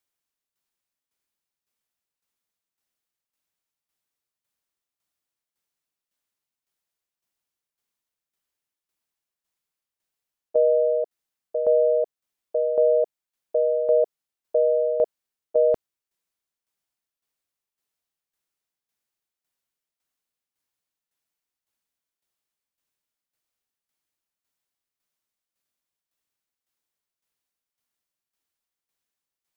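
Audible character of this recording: tremolo saw down 1.8 Hz, depth 65%

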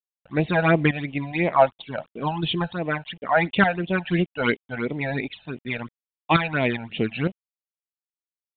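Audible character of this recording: tremolo saw up 1.1 Hz, depth 70%; a quantiser's noise floor 10-bit, dither none; phasing stages 12, 2.9 Hz, lowest notch 340–1500 Hz; µ-law

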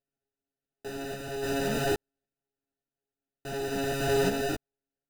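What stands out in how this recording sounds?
a buzz of ramps at a fixed pitch in blocks of 64 samples; random-step tremolo; aliases and images of a low sample rate 1100 Hz, jitter 0%; a shimmering, thickened sound

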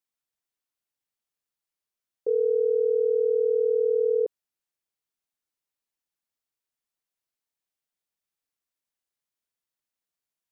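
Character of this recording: noise floor -90 dBFS; spectral tilt +2.0 dB/oct

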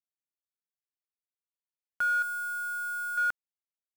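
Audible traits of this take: chopped level 0.63 Hz, depth 60%, duty 40%; a quantiser's noise floor 8-bit, dither none

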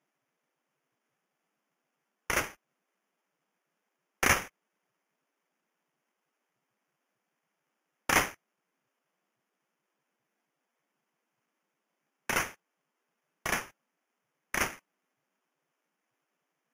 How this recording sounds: aliases and images of a low sample rate 4100 Hz, jitter 0%; Vorbis

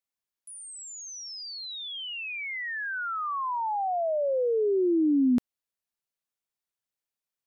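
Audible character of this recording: noise floor -91 dBFS; spectral tilt -2.5 dB/oct

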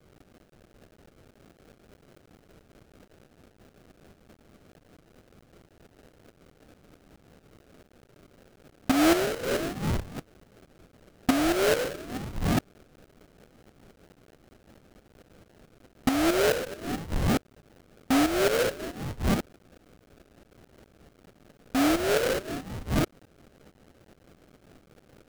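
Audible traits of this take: phasing stages 12, 1.9 Hz, lowest notch 540–1100 Hz; a quantiser's noise floor 10-bit, dither triangular; tremolo saw up 4.6 Hz, depth 65%; aliases and images of a low sample rate 1000 Hz, jitter 20%

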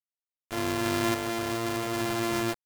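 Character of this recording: a buzz of ramps at a fixed pitch in blocks of 128 samples; random-step tremolo, depth 55%; a quantiser's noise floor 6-bit, dither none

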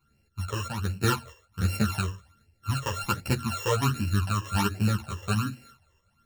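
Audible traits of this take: a buzz of ramps at a fixed pitch in blocks of 32 samples; phasing stages 12, 1.3 Hz, lowest notch 230–1200 Hz; tremolo saw up 1.5 Hz, depth 45%; a shimmering, thickened sound

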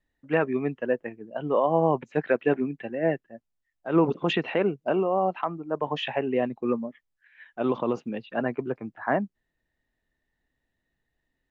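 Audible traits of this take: noise floor -81 dBFS; spectral tilt -5.0 dB/oct

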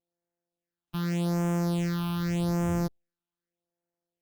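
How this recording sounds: a buzz of ramps at a fixed pitch in blocks of 256 samples; phasing stages 6, 0.84 Hz, lowest notch 510–4100 Hz; Opus

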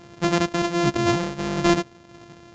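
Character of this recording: a buzz of ramps at a fixed pitch in blocks of 128 samples; tremolo triangle 1.4 Hz, depth 45%; µ-law

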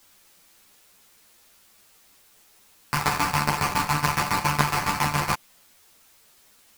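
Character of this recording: aliases and images of a low sample rate 3500 Hz, jitter 20%; tremolo saw down 7.2 Hz, depth 90%; a quantiser's noise floor 10-bit, dither triangular; a shimmering, thickened sound

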